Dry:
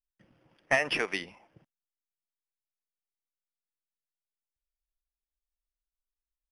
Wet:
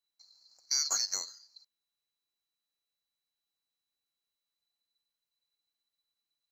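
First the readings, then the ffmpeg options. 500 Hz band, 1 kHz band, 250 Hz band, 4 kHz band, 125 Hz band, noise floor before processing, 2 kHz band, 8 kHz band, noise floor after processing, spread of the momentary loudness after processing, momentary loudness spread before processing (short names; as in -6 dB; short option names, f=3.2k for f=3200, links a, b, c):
-24.0 dB, -11.5 dB, under -20 dB, +4.5 dB, under -20 dB, under -85 dBFS, -21.0 dB, +17.5 dB, under -85 dBFS, 10 LU, 12 LU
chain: -af "afftfilt=real='real(if(lt(b,736),b+184*(1-2*mod(floor(b/184),2)),b),0)':imag='imag(if(lt(b,736),b+184*(1-2*mod(floor(b/184),2)),b),0)':win_size=2048:overlap=0.75,alimiter=limit=-21dB:level=0:latency=1:release=78,volume=2.5dB"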